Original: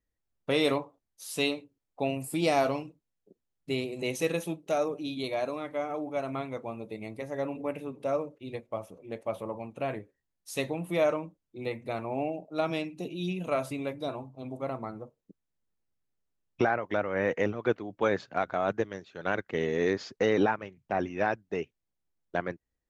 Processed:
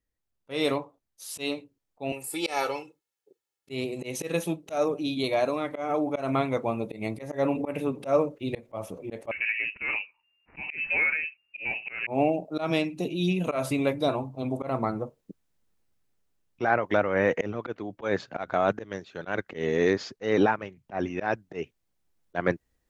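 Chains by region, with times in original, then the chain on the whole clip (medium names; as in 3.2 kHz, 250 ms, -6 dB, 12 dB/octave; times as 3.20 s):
2.12–3.70 s: high-pass 780 Hz 6 dB/octave + comb 2.3 ms, depth 80%
9.31–12.07 s: compression 3:1, threshold -34 dBFS + frequency inversion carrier 2.8 kHz
whole clip: gain riding 2 s; slow attack 142 ms; trim +5.5 dB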